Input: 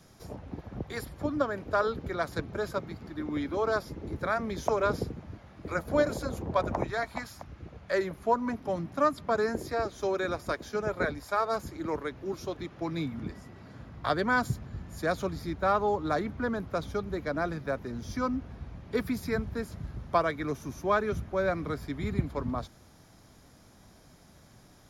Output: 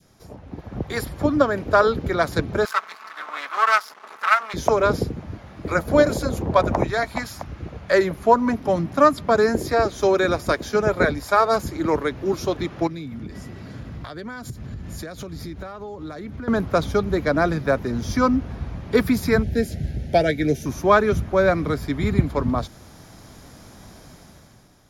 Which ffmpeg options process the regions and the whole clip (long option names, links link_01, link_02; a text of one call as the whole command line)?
ffmpeg -i in.wav -filter_complex "[0:a]asettb=1/sr,asplit=3[link_01][link_02][link_03];[link_01]atrim=end=2.654[link_04];[link_02]atrim=start=2.65:end=4.54,asetpts=PTS-STARTPTS,afade=type=in:duration=0.004:curve=qsin,afade=type=out:start_time=1.886:duration=0.004:curve=qsin,aecho=1:1:4.6:0.73,atrim=end_sample=83349,aeval=exprs='max(val(0),0)':channel_layout=same,highpass=frequency=1200:width_type=q:width=3.1[link_05];[link_03]atrim=start=4.536[link_06];[link_04][link_05]acrossfade=duration=0.004:curve1=hsin:curve2=qsin[link_07];[link_07][link_06]acrossfade=duration=0.004:curve1=qsin:curve2=hsin,asettb=1/sr,asplit=3[link_08][link_09][link_10];[link_08]atrim=end=12.874[link_11];[link_09]atrim=start=12.87:end=16.48,asetpts=PTS-STARTPTS,afade=type=in:duration=0.004:curve=qsin,afade=type=out:start_time=3.606:duration=0.004:curve=qsin,acompressor=threshold=-41dB:ratio=8:attack=3.2:release=140:knee=1:detection=peak,equalizer=frequency=950:width=0.91:gain=-6[link_12];[link_10]atrim=start=16.476[link_13];[link_11][link_12]acrossfade=duration=0.004:curve1=hsin:curve2=qsin[link_14];[link_14][link_13]acrossfade=duration=0.004:curve1=qsin:curve2=hsin,asettb=1/sr,asplit=3[link_15][link_16][link_17];[link_15]atrim=end=19.434[link_18];[link_16]atrim=start=19.43:end=20.66,asetpts=PTS-STARTPTS,afade=type=in:duration=0.004:curve=qsin,afade=type=out:start_time=1.226:duration=0.004:curve=qsin,asuperstop=centerf=1100:order=4:qfactor=1.1,asplit=2[link_19][link_20];[link_20]adelay=13,volume=-12dB[link_21];[link_19][link_21]amix=inputs=2:normalize=0,atrim=end_sample=54243[link_22];[link_17]atrim=start=20.656[link_23];[link_18][link_22]acrossfade=duration=0.004:curve1=hsin:curve2=qsin[link_24];[link_24][link_23]acrossfade=duration=0.004:curve1=qsin:curve2=hsin,adynamicequalizer=threshold=0.00891:dfrequency=1100:dqfactor=0.89:tfrequency=1100:tqfactor=0.89:attack=5:release=100:ratio=0.375:range=2.5:mode=cutabove:tftype=bell,dynaudnorm=framelen=130:gausssize=11:maxgain=12dB" out.wav